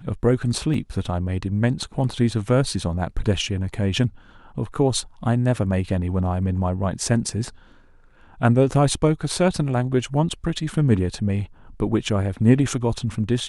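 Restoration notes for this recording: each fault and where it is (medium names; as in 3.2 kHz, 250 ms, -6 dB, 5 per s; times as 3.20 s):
0.74 s: dropout 2.9 ms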